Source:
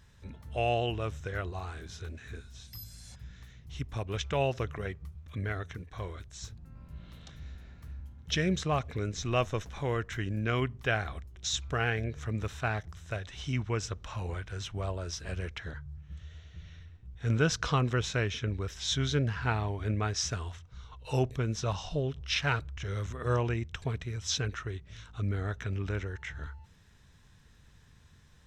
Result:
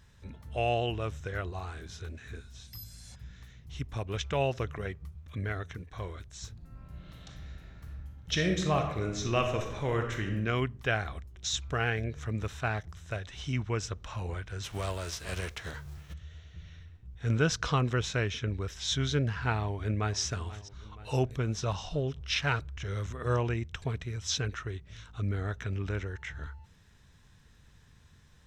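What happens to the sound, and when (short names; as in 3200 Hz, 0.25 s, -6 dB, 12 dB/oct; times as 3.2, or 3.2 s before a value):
6.52–10.32 reverb throw, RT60 0.88 s, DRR 3 dB
14.63–16.12 spectral whitening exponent 0.6
19.55–20.2 echo throw 0.48 s, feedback 60%, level -17 dB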